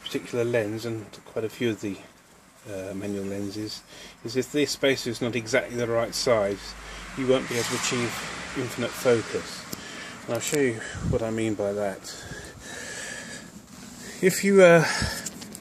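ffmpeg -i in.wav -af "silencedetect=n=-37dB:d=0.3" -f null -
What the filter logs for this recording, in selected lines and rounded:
silence_start: 2.05
silence_end: 2.66 | silence_duration: 0.62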